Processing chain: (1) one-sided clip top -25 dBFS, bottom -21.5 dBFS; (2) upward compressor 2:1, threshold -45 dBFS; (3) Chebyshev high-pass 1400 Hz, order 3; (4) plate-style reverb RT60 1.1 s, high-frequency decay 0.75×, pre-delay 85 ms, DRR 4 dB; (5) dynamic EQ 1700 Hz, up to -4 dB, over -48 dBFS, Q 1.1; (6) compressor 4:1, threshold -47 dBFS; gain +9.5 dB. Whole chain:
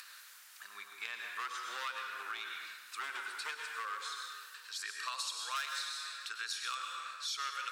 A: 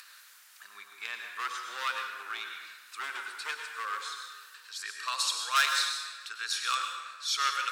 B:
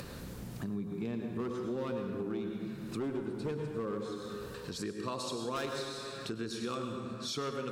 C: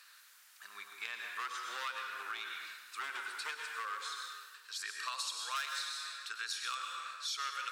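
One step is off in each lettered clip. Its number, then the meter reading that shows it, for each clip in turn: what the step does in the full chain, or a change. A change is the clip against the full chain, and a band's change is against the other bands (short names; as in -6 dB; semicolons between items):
6, crest factor change +5.5 dB; 3, 500 Hz band +27.0 dB; 2, momentary loudness spread change +1 LU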